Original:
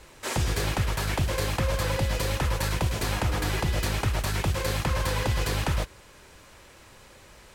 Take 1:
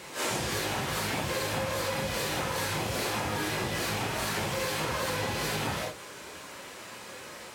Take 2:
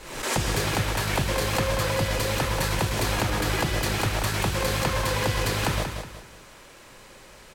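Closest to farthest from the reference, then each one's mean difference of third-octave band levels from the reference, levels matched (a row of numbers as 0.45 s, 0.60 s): 2, 1; 2.5 dB, 5.5 dB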